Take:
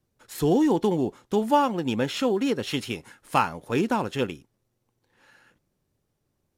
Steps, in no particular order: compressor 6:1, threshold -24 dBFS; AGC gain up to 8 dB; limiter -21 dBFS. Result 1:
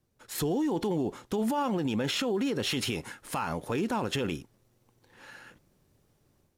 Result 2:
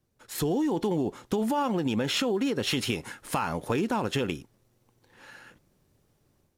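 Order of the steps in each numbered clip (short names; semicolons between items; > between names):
AGC > limiter > compressor; limiter > AGC > compressor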